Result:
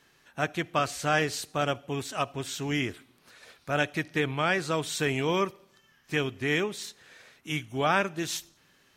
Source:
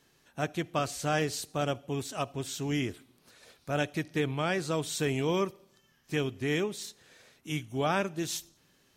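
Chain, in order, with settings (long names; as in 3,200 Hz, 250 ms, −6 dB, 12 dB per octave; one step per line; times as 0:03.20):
parametric band 1,700 Hz +7 dB 2.2 octaves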